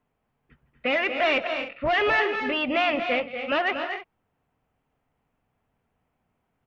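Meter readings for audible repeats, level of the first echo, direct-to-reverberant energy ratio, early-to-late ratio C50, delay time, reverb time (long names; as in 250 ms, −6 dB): 3, −17.5 dB, no reverb audible, no reverb audible, 159 ms, no reverb audible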